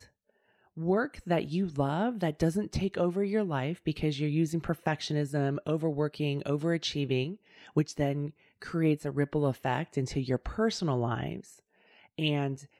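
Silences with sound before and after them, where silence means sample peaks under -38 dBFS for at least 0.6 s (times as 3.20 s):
11.40–12.19 s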